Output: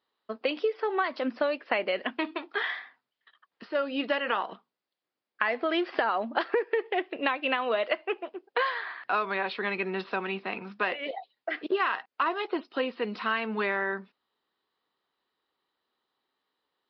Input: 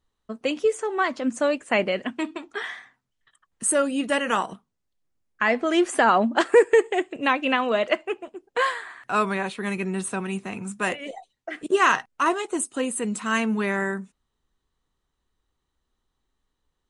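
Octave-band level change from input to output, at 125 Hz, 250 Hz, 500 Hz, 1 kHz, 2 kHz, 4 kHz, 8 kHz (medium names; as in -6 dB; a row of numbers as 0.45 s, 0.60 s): under -10 dB, -8.5 dB, -6.5 dB, -5.5 dB, -4.0 dB, -3.5 dB, under -40 dB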